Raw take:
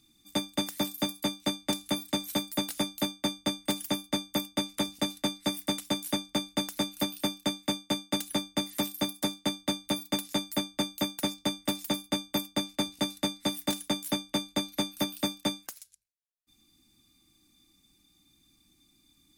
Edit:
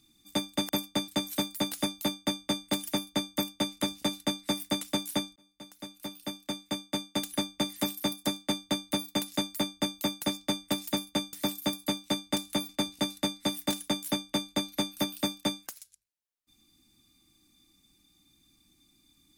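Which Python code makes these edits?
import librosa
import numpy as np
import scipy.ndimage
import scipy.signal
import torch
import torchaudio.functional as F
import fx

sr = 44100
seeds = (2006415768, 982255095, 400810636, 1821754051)

y = fx.edit(x, sr, fx.swap(start_s=0.69, length_s=1.36, other_s=12.3, other_length_s=0.39),
    fx.fade_in_span(start_s=6.33, length_s=2.1), tone=tone)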